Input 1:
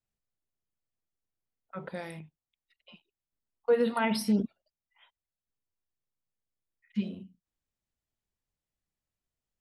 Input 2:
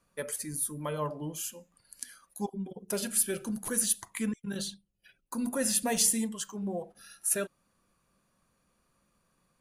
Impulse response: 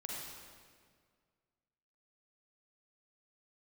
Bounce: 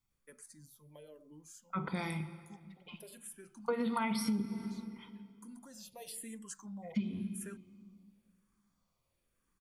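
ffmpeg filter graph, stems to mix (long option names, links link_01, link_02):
-filter_complex "[0:a]aecho=1:1:0.9:0.71,volume=1dB,asplit=3[link_01][link_02][link_03];[link_02]volume=-8.5dB[link_04];[1:a]acrossover=split=660|3100[link_05][link_06][link_07];[link_05]acompressor=threshold=-34dB:ratio=4[link_08];[link_06]acompressor=threshold=-45dB:ratio=4[link_09];[link_07]acompressor=threshold=-32dB:ratio=4[link_10];[link_08][link_09][link_10]amix=inputs=3:normalize=0,asplit=2[link_11][link_12];[link_12]afreqshift=-0.98[link_13];[link_11][link_13]amix=inputs=2:normalize=1,adelay=100,volume=-7.5dB,afade=type=in:start_time=5.73:duration=0.68:silence=0.421697[link_14];[link_03]apad=whole_len=427821[link_15];[link_14][link_15]sidechaincompress=threshold=-51dB:ratio=3:attack=45:release=262[link_16];[2:a]atrim=start_sample=2205[link_17];[link_04][link_17]afir=irnorm=-1:irlink=0[link_18];[link_01][link_16][link_18]amix=inputs=3:normalize=0,acompressor=threshold=-30dB:ratio=12"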